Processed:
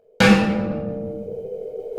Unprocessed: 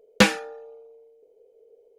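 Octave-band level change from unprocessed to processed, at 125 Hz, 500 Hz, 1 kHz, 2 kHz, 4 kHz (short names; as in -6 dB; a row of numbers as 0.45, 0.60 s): +10.0, +6.5, +5.0, +3.5, +0.5 dB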